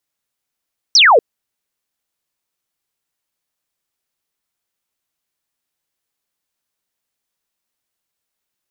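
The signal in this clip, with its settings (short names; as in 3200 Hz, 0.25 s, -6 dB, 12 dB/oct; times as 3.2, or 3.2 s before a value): laser zap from 6000 Hz, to 410 Hz, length 0.24 s sine, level -5.5 dB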